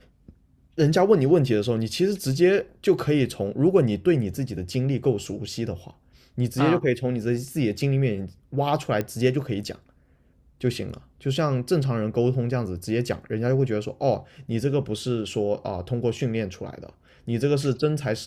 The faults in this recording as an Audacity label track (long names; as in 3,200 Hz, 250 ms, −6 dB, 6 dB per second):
9.010000	9.010000	click −14 dBFS